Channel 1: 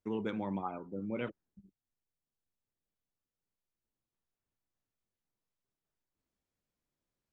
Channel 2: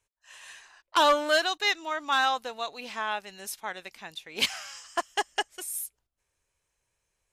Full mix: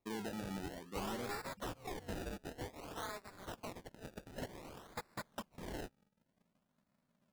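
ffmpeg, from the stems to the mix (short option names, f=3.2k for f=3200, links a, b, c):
-filter_complex "[0:a]volume=-5dB[a];[1:a]asubboost=boost=6:cutoff=77,acompressor=threshold=-30dB:ratio=12,aeval=exprs='val(0)*sgn(sin(2*PI*200*n/s))':c=same,volume=-8dB[b];[a][b]amix=inputs=2:normalize=0,acrusher=samples=28:mix=1:aa=0.000001:lfo=1:lforange=28:lforate=0.54,asoftclip=type=tanh:threshold=-33dB"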